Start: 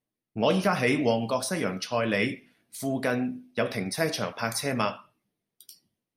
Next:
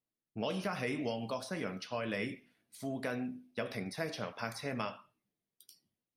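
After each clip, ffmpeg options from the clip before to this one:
-filter_complex "[0:a]acrossover=split=2000|4700[a][b][c];[a]acompressor=threshold=-25dB:ratio=4[d];[b]acompressor=threshold=-36dB:ratio=4[e];[c]acompressor=threshold=-47dB:ratio=4[f];[d][e][f]amix=inputs=3:normalize=0,volume=-8dB"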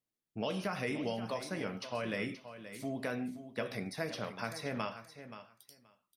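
-af "aecho=1:1:527|1054:0.251|0.0377"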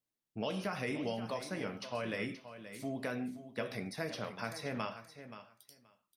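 -af "flanger=delay=6.9:depth=2.4:regen=-85:speed=1:shape=sinusoidal,volume=3.5dB"

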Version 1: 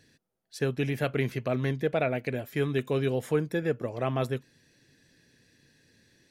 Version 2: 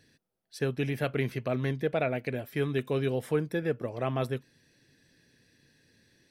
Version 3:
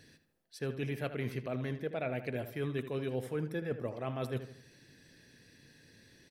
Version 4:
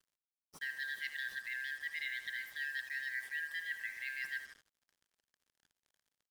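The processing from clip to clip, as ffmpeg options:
-af "bandreject=f=6.9k:w=6.3,volume=-1.5dB"
-filter_complex "[0:a]areverse,acompressor=threshold=-38dB:ratio=5,areverse,asplit=2[a][b];[b]adelay=78,lowpass=f=3.3k:p=1,volume=-10.5dB,asplit=2[c][d];[d]adelay=78,lowpass=f=3.3k:p=1,volume=0.46,asplit=2[e][f];[f]adelay=78,lowpass=f=3.3k:p=1,volume=0.46,asplit=2[g][h];[h]adelay=78,lowpass=f=3.3k:p=1,volume=0.46,asplit=2[i][j];[j]adelay=78,lowpass=f=3.3k:p=1,volume=0.46[k];[a][c][e][g][i][k]amix=inputs=6:normalize=0,volume=4dB"
-af "afftfilt=real='real(if(lt(b,272),68*(eq(floor(b/68),0)*3+eq(floor(b/68),1)*0+eq(floor(b/68),2)*1+eq(floor(b/68),3)*2)+mod(b,68),b),0)':imag='imag(if(lt(b,272),68*(eq(floor(b/68),0)*3+eq(floor(b/68),1)*0+eq(floor(b/68),2)*1+eq(floor(b/68),3)*2)+mod(b,68),b),0)':win_size=2048:overlap=0.75,acrusher=bits=7:mix=0:aa=0.5,volume=-5dB"

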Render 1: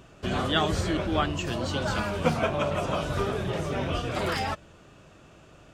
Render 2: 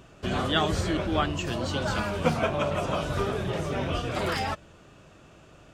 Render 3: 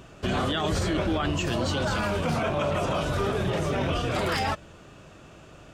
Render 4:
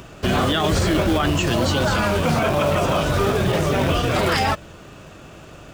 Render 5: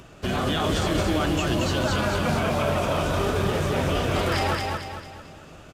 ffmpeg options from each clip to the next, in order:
-af anull
-af "alimiter=limit=-22dB:level=0:latency=1:release=18,volume=4dB"
-filter_complex "[0:a]acrossover=split=660[a][b];[a]acrusher=bits=3:mode=log:mix=0:aa=0.000001[c];[b]acompressor=mode=upward:threshold=-54dB:ratio=2.5[d];[c][d]amix=inputs=2:normalize=0,volume=7dB"
-filter_complex "[0:a]asplit=2[a][b];[b]aecho=0:1:224|448|672|896|1120|1344:0.708|0.304|0.131|0.0563|0.0242|0.0104[c];[a][c]amix=inputs=2:normalize=0,aresample=32000,aresample=44100,volume=-6.5dB"

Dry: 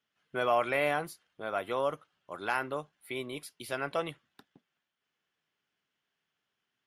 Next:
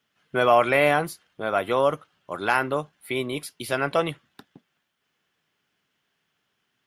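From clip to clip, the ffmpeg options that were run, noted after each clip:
-af "equalizer=f=120:t=o:w=2.7:g=3,volume=9dB"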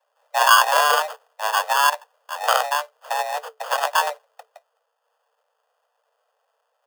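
-af "acrusher=samples=25:mix=1:aa=0.000001,afreqshift=440,volume=3dB"

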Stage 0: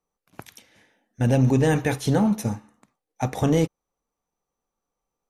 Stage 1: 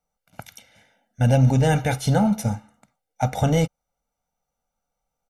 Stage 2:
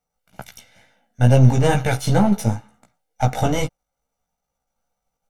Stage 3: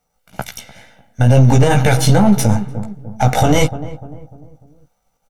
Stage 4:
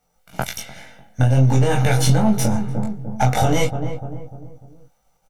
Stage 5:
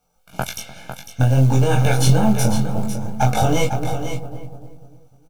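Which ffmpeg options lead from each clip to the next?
-af "aecho=1:1:1.4:0.78"
-af "aeval=exprs='if(lt(val(0),0),0.447*val(0),val(0))':c=same,flanger=delay=15:depth=2.7:speed=2.2,volume=7.5dB"
-filter_complex "[0:a]asplit=2[a][b];[b]adelay=298,lowpass=f=840:p=1,volume=-17dB,asplit=2[c][d];[d]adelay=298,lowpass=f=840:p=1,volume=0.47,asplit=2[e][f];[f]adelay=298,lowpass=f=840:p=1,volume=0.47,asplit=2[g][h];[h]adelay=298,lowpass=f=840:p=1,volume=0.47[i];[a][c][e][g][i]amix=inputs=5:normalize=0,alimiter=level_in=12dB:limit=-1dB:release=50:level=0:latency=1,volume=-1dB"
-filter_complex "[0:a]acompressor=threshold=-15dB:ratio=6,asplit=2[a][b];[b]adelay=23,volume=-3dB[c];[a][c]amix=inputs=2:normalize=0"
-af "acrusher=bits=8:mode=log:mix=0:aa=0.000001,asuperstop=centerf=1900:order=12:qfactor=5,aecho=1:1:501:0.355"

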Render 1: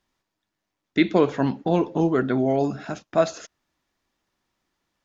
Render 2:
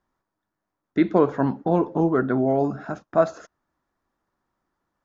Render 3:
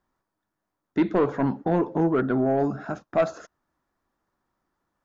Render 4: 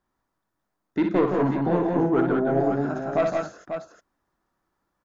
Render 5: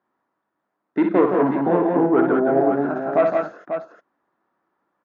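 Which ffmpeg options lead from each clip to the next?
-af "highshelf=f=1.9k:t=q:w=1.5:g=-10"
-af "asoftclip=type=tanh:threshold=-13.5dB"
-af "aecho=1:1:59|166|187|542:0.531|0.531|0.531|0.398,volume=-1.5dB"
-af "highpass=240,lowpass=2.1k,volume=5.5dB"

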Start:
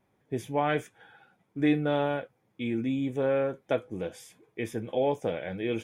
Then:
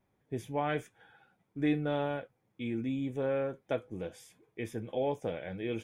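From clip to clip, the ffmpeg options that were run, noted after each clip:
-af "lowshelf=f=75:g=9,volume=-5.5dB"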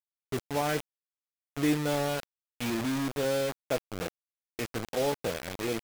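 -af "acrusher=bits=5:mix=0:aa=0.000001,volume=2.5dB"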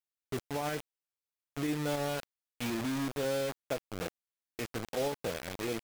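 -af "alimiter=limit=-22.5dB:level=0:latency=1:release=93,volume=-2.5dB"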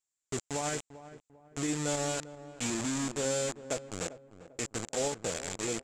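-filter_complex "[0:a]lowpass=f=7.4k:t=q:w=8.2,asplit=2[a][b];[b]adelay=396,lowpass=f=1.1k:p=1,volume=-13.5dB,asplit=2[c][d];[d]adelay=396,lowpass=f=1.1k:p=1,volume=0.39,asplit=2[e][f];[f]adelay=396,lowpass=f=1.1k:p=1,volume=0.39,asplit=2[g][h];[h]adelay=396,lowpass=f=1.1k:p=1,volume=0.39[i];[a][c][e][g][i]amix=inputs=5:normalize=0"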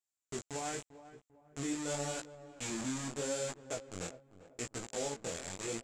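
-af "flanger=delay=15.5:depth=7.9:speed=0.84,volume=-2.5dB"

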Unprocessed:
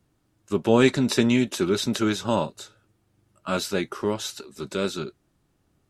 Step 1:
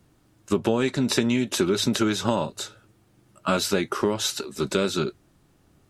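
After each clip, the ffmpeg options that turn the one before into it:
-af "bandreject=f=50:t=h:w=6,bandreject=f=100:t=h:w=6,acompressor=threshold=-26dB:ratio=16,volume=8dB"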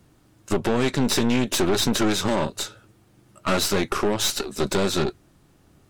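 -af "aeval=exprs='(tanh(17.8*val(0)+0.75)-tanh(0.75))/17.8':c=same,volume=8dB"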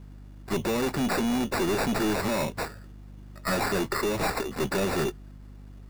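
-af "acrusher=samples=14:mix=1:aa=0.000001,aeval=exprs='0.237*(cos(1*acos(clip(val(0)/0.237,-1,1)))-cos(1*PI/2))+0.0841*(cos(2*acos(clip(val(0)/0.237,-1,1)))-cos(2*PI/2))':c=same,aeval=exprs='val(0)+0.00631*(sin(2*PI*50*n/s)+sin(2*PI*2*50*n/s)/2+sin(2*PI*3*50*n/s)/3+sin(2*PI*4*50*n/s)/4+sin(2*PI*5*50*n/s)/5)':c=same"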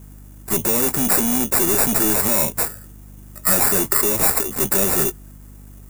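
-af "aexciter=amount=9.4:drive=2.4:freq=6.4k,volume=4dB"

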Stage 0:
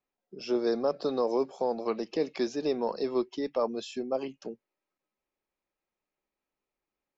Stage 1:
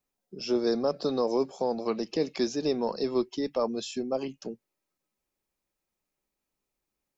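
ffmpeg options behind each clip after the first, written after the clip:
-af "bass=f=250:g=7,treble=f=4k:g=8"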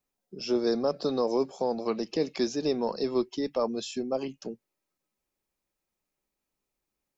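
-af anull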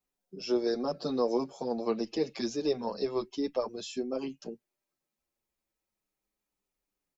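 -filter_complex "[0:a]asplit=2[a][b];[b]adelay=7.5,afreqshift=-0.29[c];[a][c]amix=inputs=2:normalize=1"

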